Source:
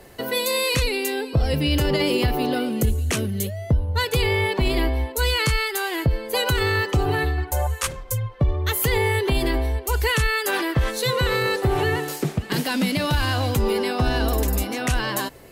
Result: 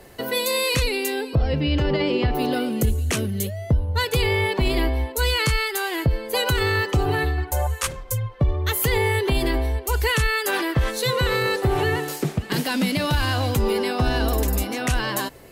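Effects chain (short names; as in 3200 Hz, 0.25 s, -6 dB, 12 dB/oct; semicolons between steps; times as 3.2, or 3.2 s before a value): 1.35–2.35 air absorption 190 m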